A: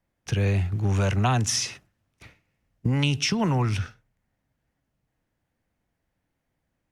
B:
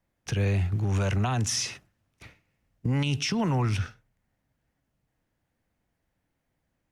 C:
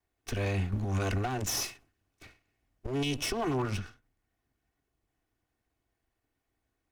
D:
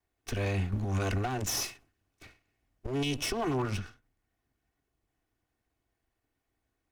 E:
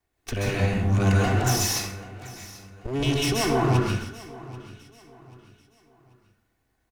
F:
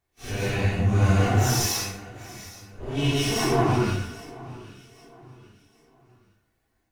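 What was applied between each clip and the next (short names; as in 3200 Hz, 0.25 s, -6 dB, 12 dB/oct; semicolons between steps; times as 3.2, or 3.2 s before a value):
limiter -18.5 dBFS, peak gain reduction 8 dB
minimum comb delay 2.7 ms; ending taper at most 180 dB/s; gain -2 dB
nothing audible
feedback echo 0.787 s, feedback 35%, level -18.5 dB; plate-style reverb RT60 0.71 s, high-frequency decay 0.6×, pre-delay 0.12 s, DRR -3.5 dB; gain +4 dB
phase scrambler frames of 0.2 s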